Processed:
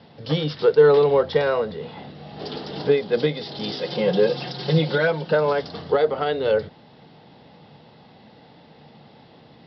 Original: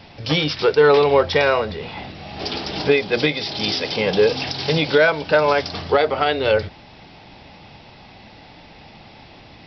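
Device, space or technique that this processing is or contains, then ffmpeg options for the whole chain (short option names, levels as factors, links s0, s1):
guitar cabinet: -filter_complex "[0:a]asettb=1/sr,asplit=3[s0][s1][s2];[s0]atrim=end=3.784[s3];[s1]atrim=start=3.78:end=5.33,asetpts=PTS-STARTPTS,afade=t=in:d=0.004:c=qsin,afade=t=out:st=1.546:d=0.004:c=qsin,aecho=1:1:5.6:0.77,atrim=end_sample=68355[s4];[s2]atrim=start=5.326[s5];[s3][s4]acrossfade=d=0.004:c1=hsin:c2=qsin[s6];[s6][s5]acrossfade=d=0.004:c1=qsin:c2=hsin,highpass=110,equalizer=f=150:t=q:w=4:g=8,equalizer=f=230:t=q:w=4:g=5,equalizer=f=470:t=q:w=4:g=8,equalizer=f=2400:t=q:w=4:g=-10,lowpass=f=4600:w=0.5412,lowpass=f=4600:w=1.3066,volume=0.473"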